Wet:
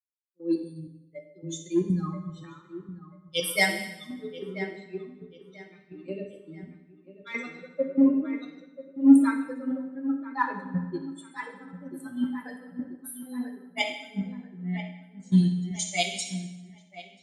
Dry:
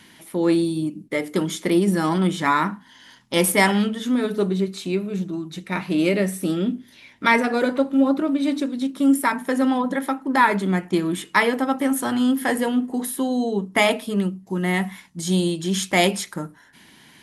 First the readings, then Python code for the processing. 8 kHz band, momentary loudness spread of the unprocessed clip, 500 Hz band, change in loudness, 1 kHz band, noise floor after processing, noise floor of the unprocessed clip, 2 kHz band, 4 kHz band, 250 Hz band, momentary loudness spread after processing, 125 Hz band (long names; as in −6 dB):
−8.0 dB, 9 LU, −12.5 dB, −6.5 dB, −13.5 dB, −56 dBFS, −51 dBFS, −9.5 dB, −7.0 dB, −6.0 dB, 23 LU, −5.5 dB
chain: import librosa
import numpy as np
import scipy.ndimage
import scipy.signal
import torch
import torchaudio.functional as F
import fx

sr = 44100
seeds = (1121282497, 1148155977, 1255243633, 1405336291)

p1 = fx.bin_expand(x, sr, power=3.0)
p2 = scipy.signal.sosfilt(scipy.signal.butter(2, 130.0, 'highpass', fs=sr, output='sos'), p1)
p3 = fx.dynamic_eq(p2, sr, hz=920.0, q=0.72, threshold_db=-37.0, ratio=4.0, max_db=-5)
p4 = np.clip(10.0 ** (18.5 / 20.0) * p3, -1.0, 1.0) / 10.0 ** (18.5 / 20.0)
p5 = p3 + (p4 * librosa.db_to_amplitude(-10.0))
p6 = fx.step_gate(p5, sr, bpm=190, pattern='..xx.xx.xxx..xx.', floor_db=-12.0, edge_ms=4.5)
p7 = p6 + fx.echo_wet_lowpass(p6, sr, ms=987, feedback_pct=45, hz=2800.0, wet_db=-9.0, dry=0)
p8 = fx.rev_fdn(p7, sr, rt60_s=1.5, lf_ratio=0.95, hf_ratio=0.9, size_ms=34.0, drr_db=2.0)
p9 = fx.band_widen(p8, sr, depth_pct=70)
y = p9 * librosa.db_to_amplitude(-5.0)